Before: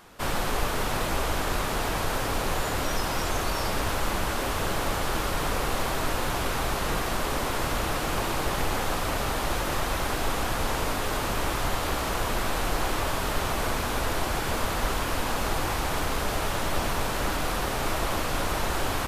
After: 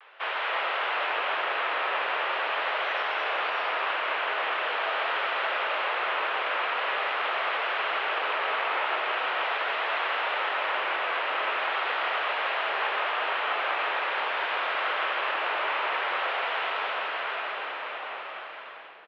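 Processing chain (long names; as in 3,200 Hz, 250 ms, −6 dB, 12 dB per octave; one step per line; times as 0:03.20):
fade-out on the ending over 2.75 s
spectral tilt +3.5 dB per octave
single-sideband voice off tune +90 Hz 330–2,900 Hz
echo with shifted repeats 322 ms, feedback 36%, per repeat −80 Hz, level −12.5 dB
convolution reverb RT60 1.2 s, pre-delay 110 ms, DRR 3 dB
pitch vibrato 0.43 Hz 28 cents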